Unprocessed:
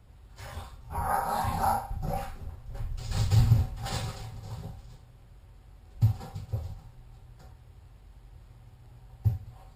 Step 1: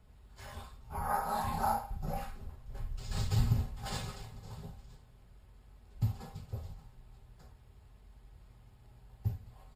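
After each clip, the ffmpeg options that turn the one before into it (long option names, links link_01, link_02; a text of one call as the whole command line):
ffmpeg -i in.wav -af "aecho=1:1:4.7:0.34,volume=-5dB" out.wav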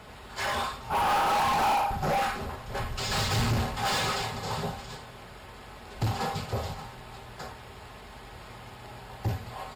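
ffmpeg -i in.wav -filter_complex "[0:a]asplit=2[link_01][link_02];[link_02]highpass=frequency=720:poles=1,volume=35dB,asoftclip=type=tanh:threshold=-16dB[link_03];[link_01][link_03]amix=inputs=2:normalize=0,lowpass=frequency=3600:poles=1,volume=-6dB,volume=-2dB" out.wav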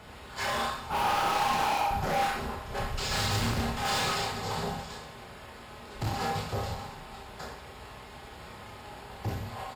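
ffmpeg -i in.wav -filter_complex "[0:a]asoftclip=type=hard:threshold=-26.5dB,asplit=2[link_01][link_02];[link_02]aecho=0:1:30|69|119.7|185.6|271.3:0.631|0.398|0.251|0.158|0.1[link_03];[link_01][link_03]amix=inputs=2:normalize=0,volume=-2dB" out.wav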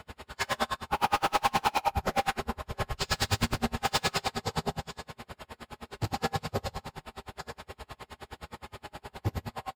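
ffmpeg -i in.wav -filter_complex "[0:a]asplit=2[link_01][link_02];[link_02]adelay=13,volume=-11dB[link_03];[link_01][link_03]amix=inputs=2:normalize=0,aeval=exprs='val(0)*pow(10,-36*(0.5-0.5*cos(2*PI*9.6*n/s))/20)':channel_layout=same,volume=6dB" out.wav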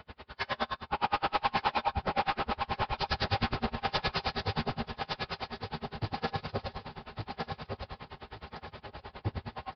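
ffmpeg -i in.wav -filter_complex "[0:a]asplit=2[link_01][link_02];[link_02]aecho=0:1:1162|2324|3486:0.596|0.125|0.0263[link_03];[link_01][link_03]amix=inputs=2:normalize=0,aresample=11025,aresample=44100,volume=-3dB" out.wav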